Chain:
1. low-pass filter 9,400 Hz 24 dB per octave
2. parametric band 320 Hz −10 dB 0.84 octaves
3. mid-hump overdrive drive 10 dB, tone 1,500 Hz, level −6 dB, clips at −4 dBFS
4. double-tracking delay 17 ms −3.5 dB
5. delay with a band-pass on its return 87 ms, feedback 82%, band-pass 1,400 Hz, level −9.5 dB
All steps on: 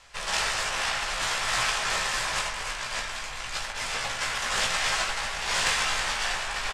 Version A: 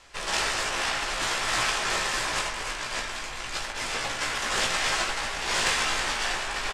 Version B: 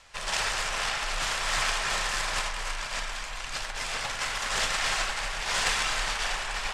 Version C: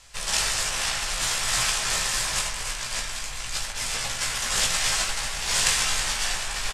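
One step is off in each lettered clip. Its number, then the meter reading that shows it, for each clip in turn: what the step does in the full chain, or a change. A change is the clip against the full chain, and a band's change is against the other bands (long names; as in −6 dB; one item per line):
2, 250 Hz band +5.5 dB
4, 125 Hz band +1.5 dB
3, 8 kHz band +7.0 dB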